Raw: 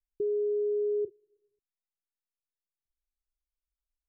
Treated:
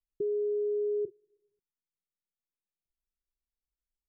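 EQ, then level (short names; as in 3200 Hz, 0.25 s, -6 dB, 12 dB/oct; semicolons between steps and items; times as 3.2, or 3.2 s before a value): rippled Chebyshev low-pass 520 Hz, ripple 3 dB; bell 190 Hz +6 dB; 0.0 dB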